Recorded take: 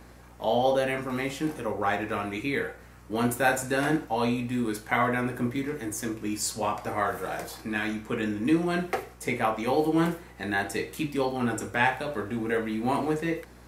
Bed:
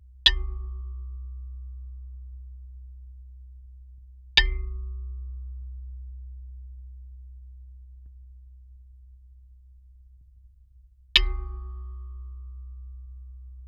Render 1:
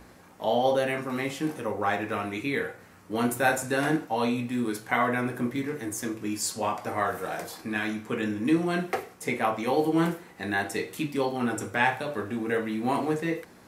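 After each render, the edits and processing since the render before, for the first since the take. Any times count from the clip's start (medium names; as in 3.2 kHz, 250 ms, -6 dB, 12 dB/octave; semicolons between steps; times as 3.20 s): de-hum 60 Hz, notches 2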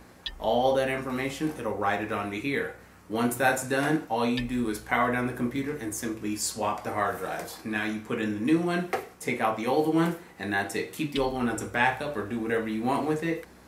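add bed -18 dB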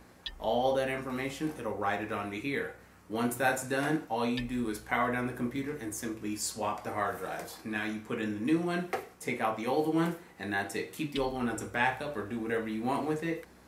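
trim -4.5 dB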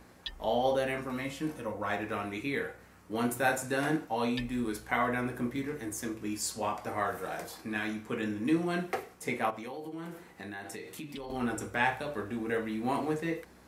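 1.12–1.90 s: comb of notches 400 Hz; 9.50–11.30 s: compression, threshold -38 dBFS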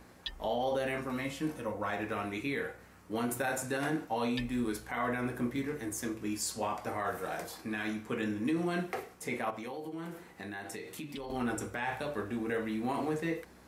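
peak limiter -23.5 dBFS, peak gain reduction 10 dB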